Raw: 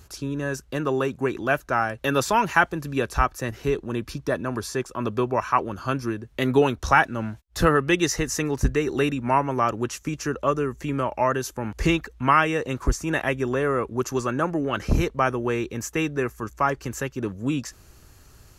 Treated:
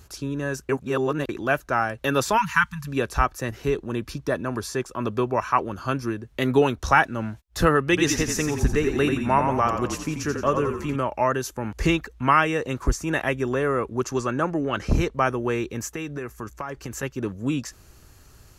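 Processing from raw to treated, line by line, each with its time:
0.69–1.29 s: reverse
2.38–2.87 s: spectral selection erased 220–870 Hz
7.83–10.96 s: frequency-shifting echo 87 ms, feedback 49%, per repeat -33 Hz, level -6 dB
13.98–15.13 s: low-pass 9.7 kHz
15.89–17.03 s: compression 10:1, threshold -27 dBFS

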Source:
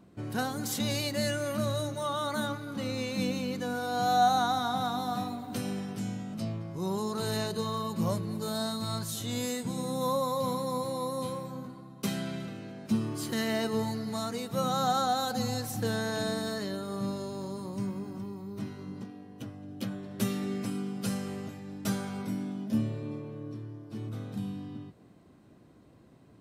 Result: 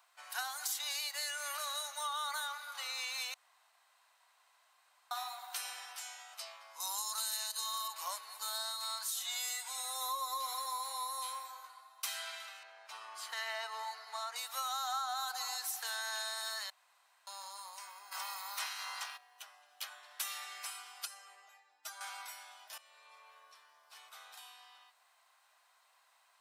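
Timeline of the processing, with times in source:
3.34–5.11 s: room tone
6.80–7.88 s: tone controls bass +12 dB, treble +11 dB
9.20–10.66 s: comb 5.5 ms
12.63–14.36 s: RIAA curve playback
14.92–15.56 s: peaking EQ 1.1 kHz +6.5 dB 0.99 oct
16.70–17.27 s: room tone
18.11–19.16 s: spectral peaks clipped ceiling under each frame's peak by 28 dB
21.05–22.01 s: spectral contrast enhancement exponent 1.5
22.78–23.36 s: fade in, from -15 dB
whole clip: steep high-pass 800 Hz 36 dB/octave; tilt EQ +1.5 dB/octave; compression 5:1, threshold -35 dBFS

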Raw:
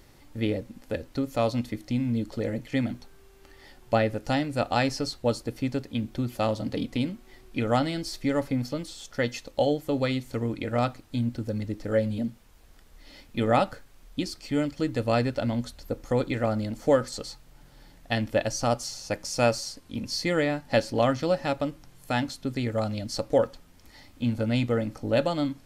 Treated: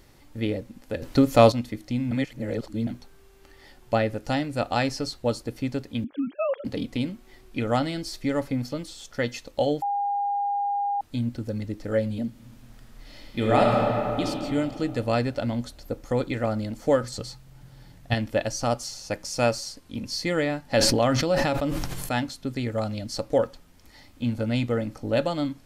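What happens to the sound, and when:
1.02–1.52 s: gain +10 dB
2.11–2.87 s: reverse
6.04–6.65 s: formants replaced by sine waves
9.82–11.01 s: bleep 809 Hz -23 dBFS
12.28–14.21 s: reverb throw, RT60 2.9 s, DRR -2.5 dB
17.03–18.14 s: peaking EQ 120 Hz +13 dB 0.9 oct
20.69–22.19 s: decay stretcher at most 22 dB/s

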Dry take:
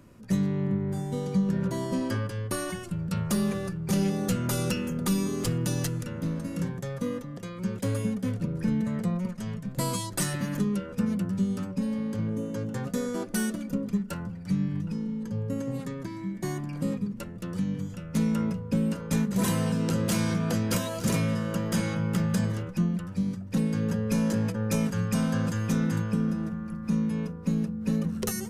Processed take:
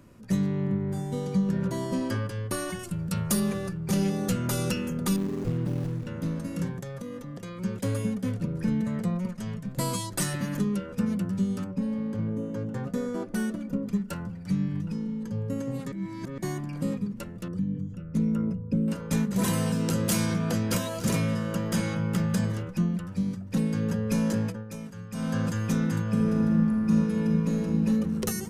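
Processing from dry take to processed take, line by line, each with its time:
2.79–3.40 s: treble shelf 6.4 kHz +9.5 dB
5.16–6.07 s: median filter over 41 samples
6.81–7.51 s: compression, threshold -33 dBFS
11.64–13.88 s: treble shelf 2.7 kHz -10 dB
15.92–16.38 s: reverse
17.48–18.88 s: resonances exaggerated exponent 1.5
19.53–20.26 s: treble shelf 6.5 kHz +7 dB
24.32–25.45 s: dip -12.5 dB, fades 0.33 s equal-power
26.02–27.76 s: reverb throw, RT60 2.8 s, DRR -1.5 dB

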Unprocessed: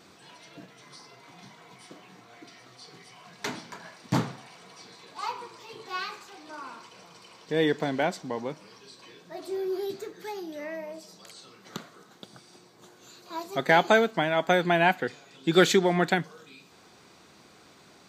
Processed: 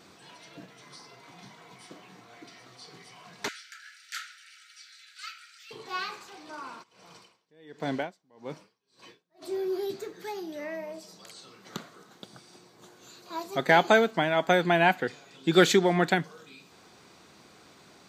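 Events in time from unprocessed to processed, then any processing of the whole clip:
3.48–5.71 s: Chebyshev high-pass 1.3 kHz, order 10
6.82–9.41 s: logarithmic tremolo 0.98 Hz -> 2.4 Hz, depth 33 dB

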